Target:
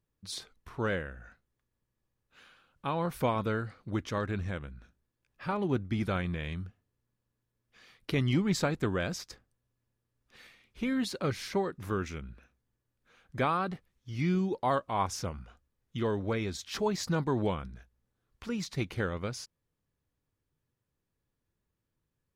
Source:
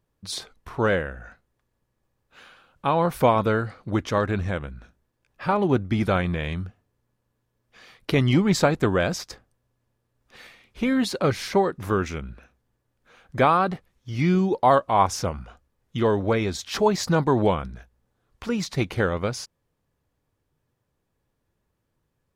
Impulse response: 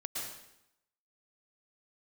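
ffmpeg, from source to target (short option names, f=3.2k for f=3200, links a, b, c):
-af "equalizer=f=710:w=1:g=-5,volume=-7.5dB"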